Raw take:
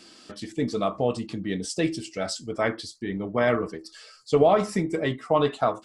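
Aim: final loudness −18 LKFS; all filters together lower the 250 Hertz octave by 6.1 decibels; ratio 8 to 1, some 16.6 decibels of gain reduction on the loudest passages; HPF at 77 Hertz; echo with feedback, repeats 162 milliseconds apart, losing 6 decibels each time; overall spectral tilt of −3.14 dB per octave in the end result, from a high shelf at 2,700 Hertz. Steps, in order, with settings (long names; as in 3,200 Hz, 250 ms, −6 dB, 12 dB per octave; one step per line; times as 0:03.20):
high-pass filter 77 Hz
parametric band 250 Hz −8.5 dB
high-shelf EQ 2,700 Hz +7.5 dB
downward compressor 8 to 1, threshold −33 dBFS
repeating echo 162 ms, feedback 50%, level −6 dB
level +18 dB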